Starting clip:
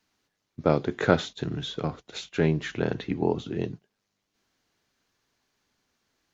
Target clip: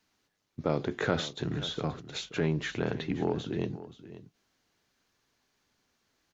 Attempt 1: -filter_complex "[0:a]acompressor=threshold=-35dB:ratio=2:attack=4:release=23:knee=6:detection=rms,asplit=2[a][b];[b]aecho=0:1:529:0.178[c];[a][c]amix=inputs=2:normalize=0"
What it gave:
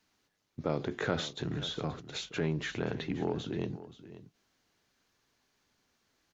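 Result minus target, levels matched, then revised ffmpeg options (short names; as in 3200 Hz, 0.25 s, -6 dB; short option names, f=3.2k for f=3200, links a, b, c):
compressor: peak gain reduction +3 dB
-filter_complex "[0:a]acompressor=threshold=-28.5dB:ratio=2:attack=4:release=23:knee=6:detection=rms,asplit=2[a][b];[b]aecho=0:1:529:0.178[c];[a][c]amix=inputs=2:normalize=0"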